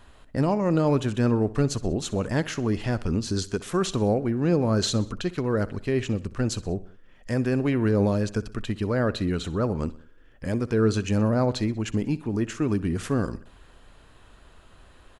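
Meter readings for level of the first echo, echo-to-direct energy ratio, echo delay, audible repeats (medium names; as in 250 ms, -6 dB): -19.0 dB, -17.5 dB, 63 ms, 3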